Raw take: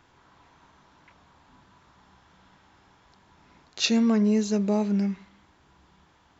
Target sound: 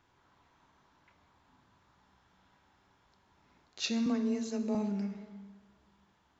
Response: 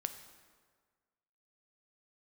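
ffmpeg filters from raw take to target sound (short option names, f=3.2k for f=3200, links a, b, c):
-filter_complex "[0:a]asettb=1/sr,asplit=3[a][b][c];[a]atrim=end=4.064[d];[b]atrim=start=4.06:end=4.75,asetpts=PTS-STARTPTS,afade=t=in:d=0.004:c=qsin,afade=t=out:st=0.686:d=0.004:c=qsin,afreqshift=19[e];[c]atrim=start=4.746[f];[d][e]acrossfade=d=0.004:c1=hsin:c2=qsin[g];[g][f]acrossfade=d=0.004:c1=qsin:c2=hsin[h];[1:a]atrim=start_sample=2205[i];[h][i]afir=irnorm=-1:irlink=0,volume=-9dB"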